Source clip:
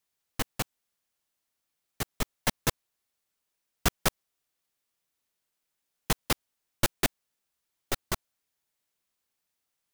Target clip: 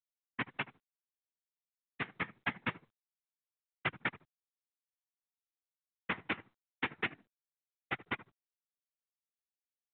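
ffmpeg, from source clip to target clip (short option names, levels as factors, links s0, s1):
-filter_complex "[0:a]aeval=exprs='val(0)+0.00316*(sin(2*PI*60*n/s)+sin(2*PI*2*60*n/s)/2+sin(2*PI*3*60*n/s)/3+sin(2*PI*4*60*n/s)/4+sin(2*PI*5*60*n/s)/5)':c=same,acrusher=bits=4:mix=0:aa=0.000001,lowpass=f=2200:t=q:w=2.9,equalizer=f=570:t=o:w=0.44:g=-9,asplit=2[s0][s1];[s1]adelay=75,lowpass=f=890:p=1,volume=0.158,asplit=2[s2][s3];[s3]adelay=75,lowpass=f=890:p=1,volume=0.15[s4];[s2][s4]amix=inputs=2:normalize=0[s5];[s0][s5]amix=inputs=2:normalize=0,flanger=delay=2.1:depth=6:regen=-68:speed=0.24:shape=sinusoidal,afftfilt=real='hypot(re,im)*cos(2*PI*random(0))':imag='hypot(re,im)*sin(2*PI*random(1))':win_size=512:overlap=0.75,highpass=f=120:w=0.5412,highpass=f=120:w=1.3066,acompressor=threshold=0.0112:ratio=4,volume=2.24" -ar 8000 -c:a pcm_mulaw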